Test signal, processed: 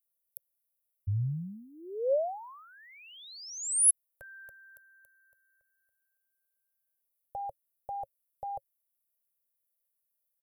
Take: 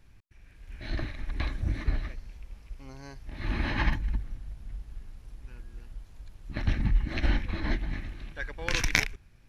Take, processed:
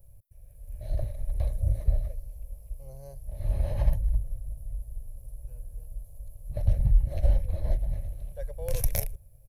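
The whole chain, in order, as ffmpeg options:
-af "firequalizer=gain_entry='entry(120,0);entry(270,-26);entry(550,5);entry(860,-15);entry(1400,-27);entry(5900,-14);entry(11000,12)':delay=0.05:min_phase=1,volume=4dB"

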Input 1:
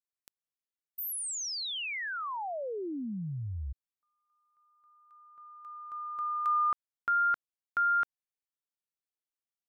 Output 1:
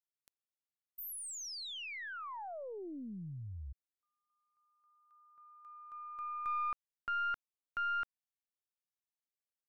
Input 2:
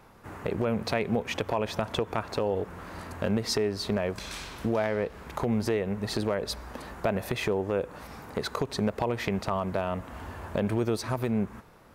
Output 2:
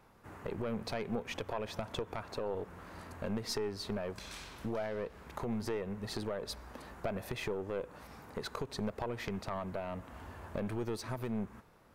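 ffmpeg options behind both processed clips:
-af "aeval=exprs='(tanh(8.91*val(0)+0.5)-tanh(0.5))/8.91':c=same,volume=-6dB"

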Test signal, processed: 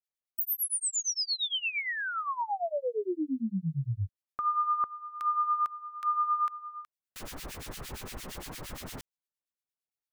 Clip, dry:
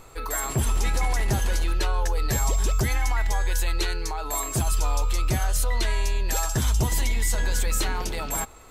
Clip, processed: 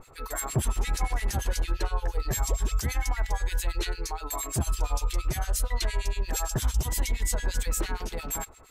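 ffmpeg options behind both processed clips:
-filter_complex "[0:a]acrossover=split=1600[a][b];[a]aeval=exprs='val(0)*(1-1/2+1/2*cos(2*PI*8.7*n/s))':c=same[c];[b]aeval=exprs='val(0)*(1-1/2-1/2*cos(2*PI*8.7*n/s))':c=same[d];[c][d]amix=inputs=2:normalize=0"

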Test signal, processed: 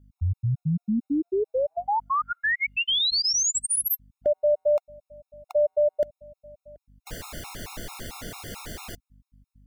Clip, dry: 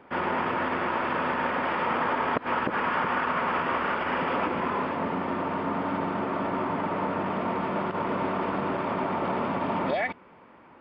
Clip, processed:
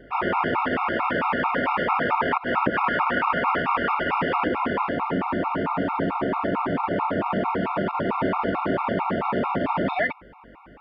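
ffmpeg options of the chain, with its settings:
-af "aeval=exprs='val(0)+0.001*(sin(2*PI*50*n/s)+sin(2*PI*2*50*n/s)/2+sin(2*PI*3*50*n/s)/3+sin(2*PI*4*50*n/s)/4+sin(2*PI*5*50*n/s)/5)':c=same,afftfilt=real='re*gt(sin(2*PI*4.5*pts/sr)*(1-2*mod(floor(b*sr/1024/710),2)),0)':imag='im*gt(sin(2*PI*4.5*pts/sr)*(1-2*mod(floor(b*sr/1024/710),2)),0)':win_size=1024:overlap=0.75,volume=7dB"

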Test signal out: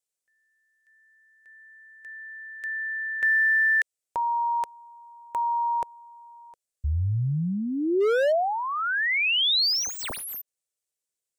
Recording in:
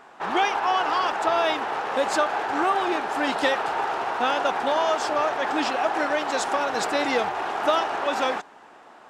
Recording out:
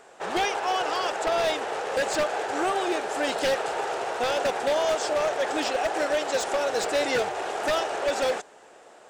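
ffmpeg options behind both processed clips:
-filter_complex "[0:a]equalizer=f=250:t=o:w=1:g=-6,equalizer=f=500:t=o:w=1:g=9,equalizer=f=1k:t=o:w=1:g=-7,equalizer=f=8k:t=o:w=1:g=12,aeval=exprs='0.158*(abs(mod(val(0)/0.158+3,4)-2)-1)':c=same,acrossover=split=5600[a][b];[b]acompressor=threshold=-36dB:ratio=4:attack=1:release=60[c];[a][c]amix=inputs=2:normalize=0,volume=-2dB"

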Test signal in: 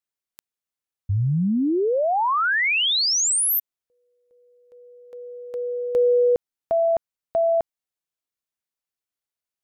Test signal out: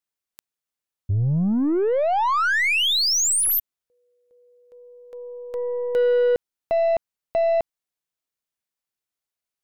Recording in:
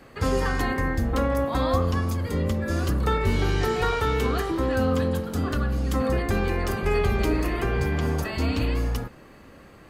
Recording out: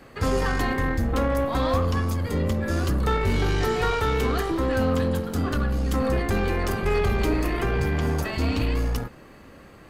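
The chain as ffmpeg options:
-af "asoftclip=type=tanh:threshold=-15.5dB,aeval=exprs='0.168*(cos(1*acos(clip(val(0)/0.168,-1,1)))-cos(1*PI/2))+0.00841*(cos(6*acos(clip(val(0)/0.168,-1,1)))-cos(6*PI/2))+0.00106*(cos(7*acos(clip(val(0)/0.168,-1,1)))-cos(7*PI/2))':c=same,volume=1.5dB"

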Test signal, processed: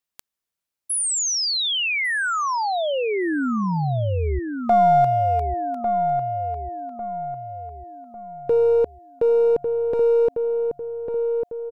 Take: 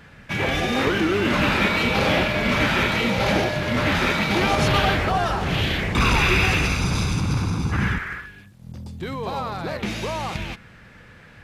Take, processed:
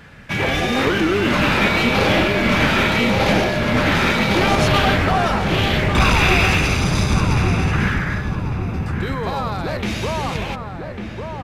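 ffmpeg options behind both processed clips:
-filter_complex "[0:a]asplit=2[a][b];[b]aeval=exprs='clip(val(0),-1,0.0631)':c=same,volume=-5dB[c];[a][c]amix=inputs=2:normalize=0,asplit=2[d][e];[e]adelay=1149,lowpass=f=1.3k:p=1,volume=-5dB,asplit=2[f][g];[g]adelay=1149,lowpass=f=1.3k:p=1,volume=0.46,asplit=2[h][i];[i]adelay=1149,lowpass=f=1.3k:p=1,volume=0.46,asplit=2[j][k];[k]adelay=1149,lowpass=f=1.3k:p=1,volume=0.46,asplit=2[l][m];[m]adelay=1149,lowpass=f=1.3k:p=1,volume=0.46,asplit=2[n][o];[o]adelay=1149,lowpass=f=1.3k:p=1,volume=0.46[p];[d][f][h][j][l][n][p]amix=inputs=7:normalize=0"

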